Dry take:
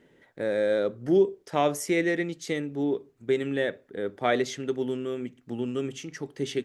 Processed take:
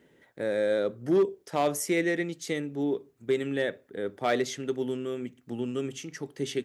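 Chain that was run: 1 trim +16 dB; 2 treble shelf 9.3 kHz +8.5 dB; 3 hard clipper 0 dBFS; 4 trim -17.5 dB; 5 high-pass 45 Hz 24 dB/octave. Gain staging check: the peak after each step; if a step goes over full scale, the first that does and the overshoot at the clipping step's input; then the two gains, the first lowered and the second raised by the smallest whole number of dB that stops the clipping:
+6.0 dBFS, +6.0 dBFS, 0.0 dBFS, -17.5 dBFS, -15.5 dBFS; step 1, 6.0 dB; step 1 +10 dB, step 4 -11.5 dB

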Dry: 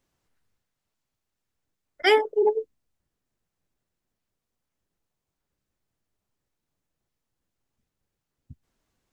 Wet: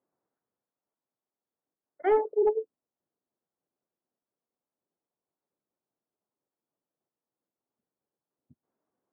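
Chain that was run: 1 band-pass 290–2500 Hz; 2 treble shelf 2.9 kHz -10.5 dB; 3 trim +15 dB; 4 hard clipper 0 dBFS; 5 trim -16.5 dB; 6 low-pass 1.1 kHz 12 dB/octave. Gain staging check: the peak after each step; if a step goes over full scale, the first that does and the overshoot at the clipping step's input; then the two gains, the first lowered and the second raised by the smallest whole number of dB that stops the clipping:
-9.5 dBFS, -10.5 dBFS, +4.5 dBFS, 0.0 dBFS, -16.5 dBFS, -16.0 dBFS; step 3, 4.5 dB; step 3 +10 dB, step 5 -11.5 dB

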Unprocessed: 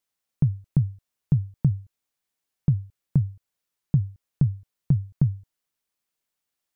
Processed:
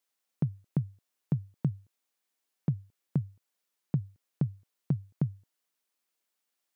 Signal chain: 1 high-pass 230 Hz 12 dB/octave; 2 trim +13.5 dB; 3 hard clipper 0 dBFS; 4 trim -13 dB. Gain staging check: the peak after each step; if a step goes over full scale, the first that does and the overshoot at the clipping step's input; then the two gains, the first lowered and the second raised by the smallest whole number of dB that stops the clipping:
-18.5 dBFS, -5.0 dBFS, -5.0 dBFS, -18.0 dBFS; nothing clips

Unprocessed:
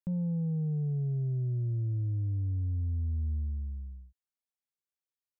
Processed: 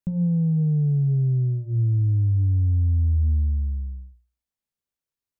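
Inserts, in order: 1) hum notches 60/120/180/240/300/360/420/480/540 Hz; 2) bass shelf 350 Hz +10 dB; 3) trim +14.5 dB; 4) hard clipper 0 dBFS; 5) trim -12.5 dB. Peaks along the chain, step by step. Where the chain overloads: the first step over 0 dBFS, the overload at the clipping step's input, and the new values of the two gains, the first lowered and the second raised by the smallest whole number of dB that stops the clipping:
-27.0 dBFS, -18.0 dBFS, -3.5 dBFS, -3.5 dBFS, -16.0 dBFS; nothing clips

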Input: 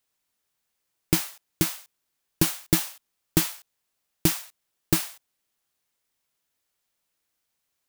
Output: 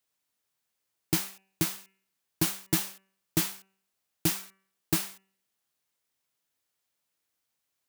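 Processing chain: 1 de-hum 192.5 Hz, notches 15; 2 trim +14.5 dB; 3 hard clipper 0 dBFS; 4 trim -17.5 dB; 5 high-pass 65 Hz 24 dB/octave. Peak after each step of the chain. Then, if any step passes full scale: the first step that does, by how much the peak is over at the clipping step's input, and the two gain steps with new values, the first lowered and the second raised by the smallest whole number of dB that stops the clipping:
-5.0 dBFS, +9.5 dBFS, 0.0 dBFS, -17.5 dBFS, -11.5 dBFS; step 2, 9.5 dB; step 2 +4.5 dB, step 4 -7.5 dB

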